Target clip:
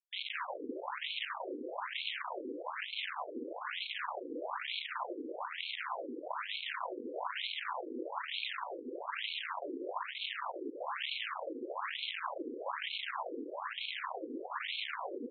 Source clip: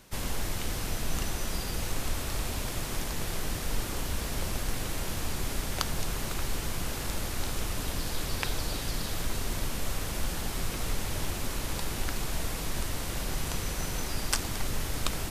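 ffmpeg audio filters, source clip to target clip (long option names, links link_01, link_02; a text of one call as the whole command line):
ffmpeg -i in.wav -filter_complex "[0:a]aeval=exprs='val(0)*sin(2*PI*110*n/s)':channel_layout=same,asplit=2[link_01][link_02];[link_02]aeval=exprs='sgn(val(0))*max(abs(val(0))-0.01,0)':channel_layout=same,volume=-10dB[link_03];[link_01][link_03]amix=inputs=2:normalize=0,aeval=exprs='val(0)+0.002*sin(2*PI*2700*n/s)':channel_layout=same,aresample=16000,asoftclip=type=tanh:threshold=-22dB,aresample=44100,acrusher=bits=4:mix=0:aa=0.000001,equalizer=frequency=400:width_type=o:width=0.33:gain=-11,equalizer=frequency=1000:width_type=o:width=0.33:gain=9,equalizer=frequency=3150:width_type=o:width=0.33:gain=5,equalizer=frequency=5000:width_type=o:width=0.33:gain=-10,asplit=8[link_04][link_05][link_06][link_07][link_08][link_09][link_10][link_11];[link_05]adelay=193,afreqshift=130,volume=-10.5dB[link_12];[link_06]adelay=386,afreqshift=260,volume=-15.1dB[link_13];[link_07]adelay=579,afreqshift=390,volume=-19.7dB[link_14];[link_08]adelay=772,afreqshift=520,volume=-24.2dB[link_15];[link_09]adelay=965,afreqshift=650,volume=-28.8dB[link_16];[link_10]adelay=1158,afreqshift=780,volume=-33.4dB[link_17];[link_11]adelay=1351,afreqshift=910,volume=-38dB[link_18];[link_04][link_12][link_13][link_14][link_15][link_16][link_17][link_18]amix=inputs=8:normalize=0,afftfilt=real='re*between(b*sr/1024,350*pow(3100/350,0.5+0.5*sin(2*PI*1.1*pts/sr))/1.41,350*pow(3100/350,0.5+0.5*sin(2*PI*1.1*pts/sr))*1.41)':imag='im*between(b*sr/1024,350*pow(3100/350,0.5+0.5*sin(2*PI*1.1*pts/sr))/1.41,350*pow(3100/350,0.5+0.5*sin(2*PI*1.1*pts/sr))*1.41)':win_size=1024:overlap=0.75,volume=1dB" out.wav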